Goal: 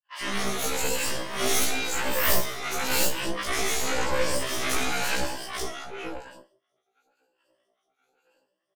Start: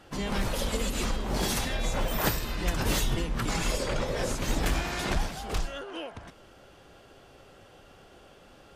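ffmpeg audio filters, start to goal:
-filter_complex "[0:a]afftfilt=real='re*pow(10,15/40*sin(2*PI*(1.3*log(max(b,1)*sr/1024/100)/log(2)-(0.95)*(pts-256)/sr)))':imag='im*pow(10,15/40*sin(2*PI*(1.3*log(max(b,1)*sr/1024/100)/log(2)-(0.95)*(pts-256)/sr)))':win_size=1024:overlap=0.75,highpass=380,agate=range=-50dB:threshold=-49dB:ratio=16:detection=peak,asplit=2[a][b];[b]asoftclip=type=tanh:threshold=-20.5dB,volume=-3dB[c];[a][c]amix=inputs=2:normalize=0,flanger=delay=18:depth=5.5:speed=0.55,aeval=exprs='0.299*(cos(1*acos(clip(val(0)/0.299,-1,1)))-cos(1*PI/2))+0.106*(cos(6*acos(clip(val(0)/0.299,-1,1)))-cos(6*PI/2))':c=same,acrossover=split=930|3800[d][e][f];[f]adelay=50[g];[d]adelay=100[h];[h][e][g]amix=inputs=3:normalize=0,afftfilt=real='re*1.73*eq(mod(b,3),0)':imag='im*1.73*eq(mod(b,3),0)':win_size=2048:overlap=0.75,volume=2.5dB"

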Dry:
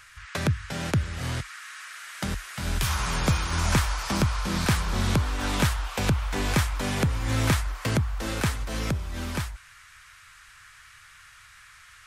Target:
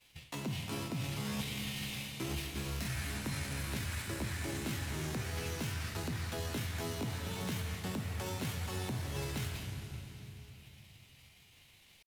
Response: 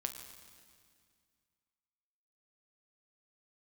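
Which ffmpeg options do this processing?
-filter_complex "[0:a]asetrate=74167,aresample=44100,atempo=0.594604,areverse,acompressor=threshold=-37dB:ratio=16,areverse,acrusher=bits=9:mix=0:aa=0.000001,agate=range=-33dB:threshold=-40dB:ratio=3:detection=peak[a];[1:a]atrim=start_sample=2205,asetrate=28224,aresample=44100[b];[a][b]afir=irnorm=-1:irlink=0,acrossover=split=460|3900[c][d][e];[c]acompressor=threshold=-42dB:ratio=4[f];[d]acompressor=threshold=-46dB:ratio=4[g];[e]acompressor=threshold=-48dB:ratio=4[h];[f][g][h]amix=inputs=3:normalize=0,asplit=2[i][j];[j]acrusher=samples=14:mix=1:aa=0.000001,volume=-11dB[k];[i][k]amix=inputs=2:normalize=0,volume=3dB"

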